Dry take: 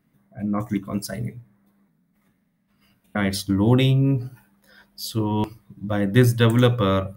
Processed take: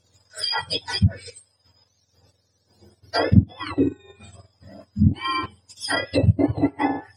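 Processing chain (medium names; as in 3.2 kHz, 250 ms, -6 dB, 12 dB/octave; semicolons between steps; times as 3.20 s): spectrum inverted on a logarithmic axis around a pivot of 1 kHz; low-pass that closes with the level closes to 500 Hz, closed at -18.5 dBFS; transient shaper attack +1 dB, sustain -7 dB; trim +7 dB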